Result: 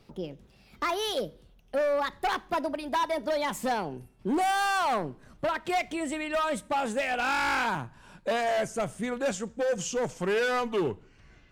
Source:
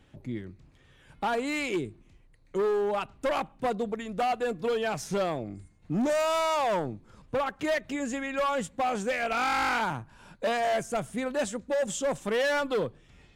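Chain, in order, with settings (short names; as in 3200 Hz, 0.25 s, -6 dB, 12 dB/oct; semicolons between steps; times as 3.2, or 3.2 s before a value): speed glide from 152% -> 80%; two-slope reverb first 0.44 s, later 1.5 s, from -24 dB, DRR 18 dB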